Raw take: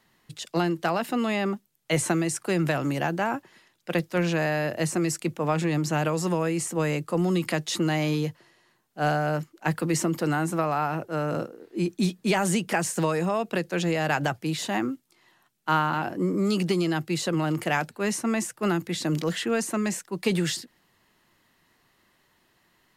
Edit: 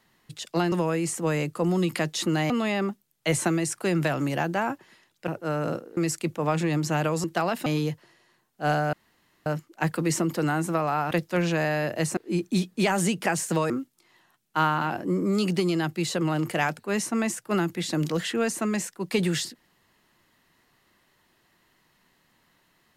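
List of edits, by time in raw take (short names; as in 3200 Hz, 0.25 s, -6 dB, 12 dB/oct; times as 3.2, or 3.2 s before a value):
0.72–1.14 swap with 6.25–8.03
3.92–4.98 swap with 10.95–11.64
9.3 insert room tone 0.53 s
13.17–14.82 cut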